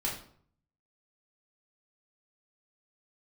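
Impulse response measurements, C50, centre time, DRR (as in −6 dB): 5.5 dB, 32 ms, −4.0 dB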